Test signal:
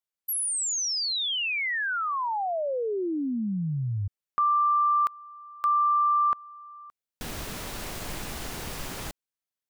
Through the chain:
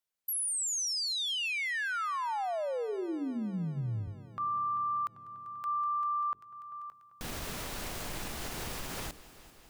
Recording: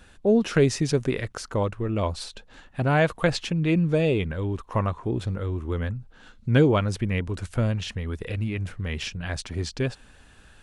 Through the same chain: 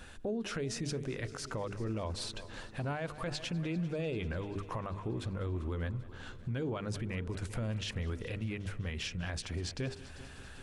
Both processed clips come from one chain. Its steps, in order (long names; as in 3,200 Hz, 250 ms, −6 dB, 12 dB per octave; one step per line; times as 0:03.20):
downward compressor 2 to 1, threshold −39 dBFS
mains-hum notches 50/100/150/200/250/300/350/400/450 Hz
echo machine with several playback heads 196 ms, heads first and second, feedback 67%, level −22 dB
brickwall limiter −30.5 dBFS
level +2 dB